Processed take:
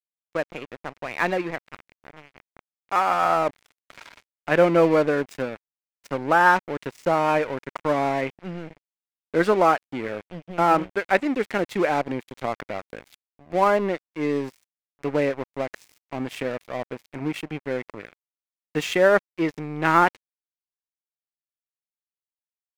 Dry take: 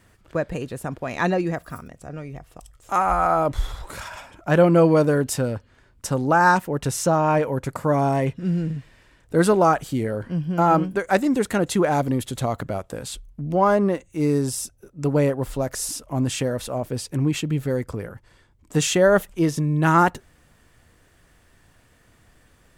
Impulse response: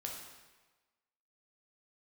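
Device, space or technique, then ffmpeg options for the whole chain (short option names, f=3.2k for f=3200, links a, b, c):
pocket radio on a weak battery: -af "highpass=260,lowpass=4.1k,aeval=exprs='sgn(val(0))*max(abs(val(0))-0.02,0)':c=same,equalizer=f=2.2k:t=o:w=0.57:g=7"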